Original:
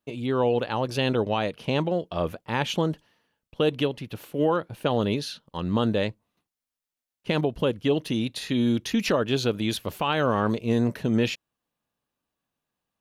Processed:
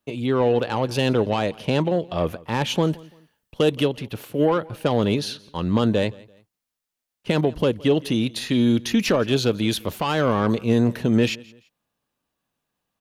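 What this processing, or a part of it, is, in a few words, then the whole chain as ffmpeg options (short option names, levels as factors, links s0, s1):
one-band saturation: -filter_complex "[0:a]acrossover=split=490|4800[s0][s1][s2];[s1]asoftclip=type=tanh:threshold=0.0708[s3];[s0][s3][s2]amix=inputs=3:normalize=0,asettb=1/sr,asplit=3[s4][s5][s6];[s4]atrim=end=2.824[s7];[s5]atrim=start=2.82:end=3.83,asetpts=PTS-STARTPTS,afade=t=in:d=0.004:c=qsin,afade=t=out:st=1.006:d=0.004:c=qsin,highshelf=f=7000:g=7.5[s8];[s6]atrim=start=3.826[s9];[s7][s8]acrossfade=d=0.004:c1=hsin:c2=qsin[s10];[s10][s9]acrossfade=d=0.004:c1=qsin:c2=hsin,aecho=1:1:169|338:0.0708|0.0227,volume=1.68"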